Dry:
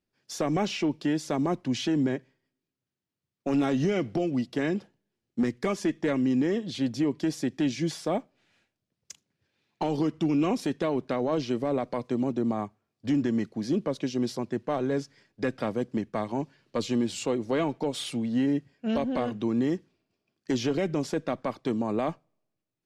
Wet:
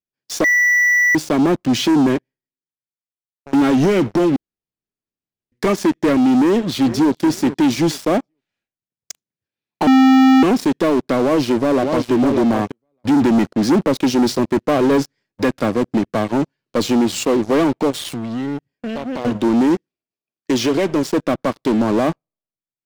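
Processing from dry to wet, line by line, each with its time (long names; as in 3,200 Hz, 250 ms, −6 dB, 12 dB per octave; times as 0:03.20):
0:00.44–0:01.15: beep over 1,960 Hz −22 dBFS
0:02.14–0:03.53: fade out, to −19.5 dB
0:04.36–0:05.52: fill with room tone
0:06.39–0:07.22: delay throw 430 ms, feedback 40%, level −17 dB
0:09.87–0:10.43: beep over 263 Hz −6.5 dBFS
0:11.22–0:12.11: delay throw 600 ms, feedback 10%, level −6.5 dB
0:13.21–0:15.43: clip gain +3 dB
0:17.90–0:19.25: downward compressor 5 to 1, threshold −35 dBFS
0:19.75–0:21.12: low-shelf EQ 300 Hz −7 dB
whole clip: dynamic equaliser 310 Hz, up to +4 dB, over −36 dBFS, Q 1.7; leveller curve on the samples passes 5; level −5.5 dB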